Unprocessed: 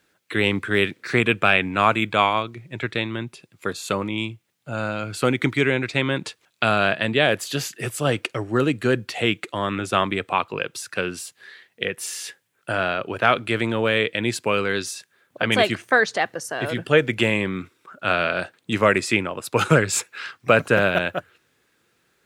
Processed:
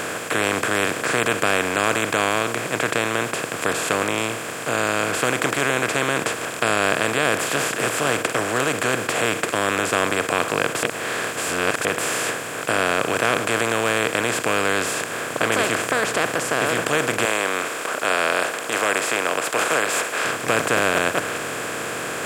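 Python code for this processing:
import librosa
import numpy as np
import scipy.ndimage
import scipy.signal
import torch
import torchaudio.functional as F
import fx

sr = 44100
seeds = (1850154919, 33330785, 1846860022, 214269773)

y = fx.highpass(x, sr, hz=580.0, slope=24, at=(17.25, 20.25))
y = fx.edit(y, sr, fx.reverse_span(start_s=10.83, length_s=1.02), tone=tone)
y = fx.bin_compress(y, sr, power=0.2)
y = fx.high_shelf(y, sr, hz=8600.0, db=10.5)
y = F.gain(torch.from_numpy(y), -11.0).numpy()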